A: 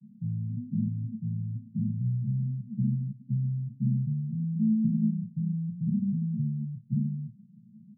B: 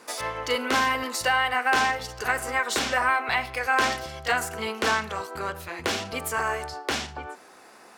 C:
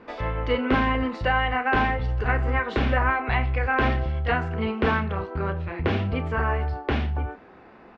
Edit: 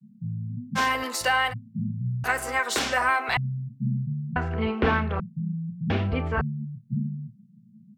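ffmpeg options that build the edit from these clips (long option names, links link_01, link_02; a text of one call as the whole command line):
ffmpeg -i take0.wav -i take1.wav -i take2.wav -filter_complex "[1:a]asplit=2[link_01][link_02];[2:a]asplit=2[link_03][link_04];[0:a]asplit=5[link_05][link_06][link_07][link_08][link_09];[link_05]atrim=end=0.79[link_10];[link_01]atrim=start=0.75:end=1.54[link_11];[link_06]atrim=start=1.5:end=2.242[link_12];[link_02]atrim=start=2.238:end=3.372[link_13];[link_07]atrim=start=3.368:end=4.362[link_14];[link_03]atrim=start=4.358:end=5.202[link_15];[link_08]atrim=start=5.198:end=5.902[link_16];[link_04]atrim=start=5.898:end=6.412[link_17];[link_09]atrim=start=6.408[link_18];[link_10][link_11]acrossfade=duration=0.04:curve1=tri:curve2=tri[link_19];[link_19][link_12]acrossfade=duration=0.04:curve1=tri:curve2=tri[link_20];[link_20][link_13]acrossfade=duration=0.004:curve1=hsin:curve2=hsin[link_21];[link_21][link_14]acrossfade=duration=0.004:curve1=hsin:curve2=hsin[link_22];[link_22][link_15]acrossfade=duration=0.004:curve1=hsin:curve2=hsin[link_23];[link_23][link_16]acrossfade=duration=0.004:curve1=hsin:curve2=hsin[link_24];[link_24][link_17]acrossfade=duration=0.004:curve1=hsin:curve2=hsin[link_25];[link_25][link_18]acrossfade=duration=0.004:curve1=hsin:curve2=hsin" out.wav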